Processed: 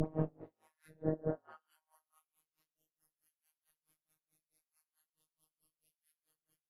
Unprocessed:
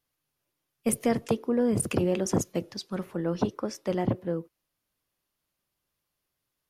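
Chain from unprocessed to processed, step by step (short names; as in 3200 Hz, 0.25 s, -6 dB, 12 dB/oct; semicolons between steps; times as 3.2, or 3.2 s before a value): random spectral dropouts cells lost 30%; bell 11000 Hz +13 dB 0.25 oct; in parallel at +1 dB: compressor, threshold -35 dBFS, peak gain reduction 15 dB; on the sum: Paulstretch 5.9×, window 0.05 s, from 4.1; whisperiser; dispersion highs, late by 74 ms, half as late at 1400 Hz; robotiser 157 Hz; on a send: frequency-shifting echo 0.105 s, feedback 32%, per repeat +110 Hz, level -19 dB; on the sum: treble ducked by the level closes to 1200 Hz, closed at -29.5 dBFS; dB-linear tremolo 4.6 Hz, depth 30 dB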